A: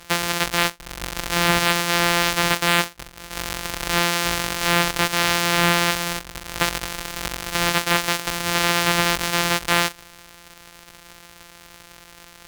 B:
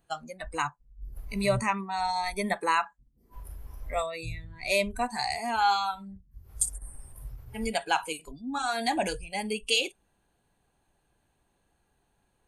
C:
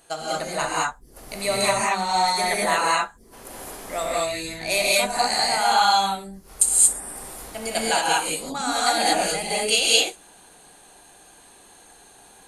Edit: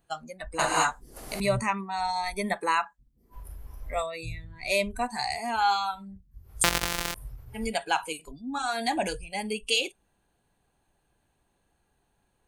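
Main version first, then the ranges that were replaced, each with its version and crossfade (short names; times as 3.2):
B
0.59–1.4 from C
6.64–7.14 from A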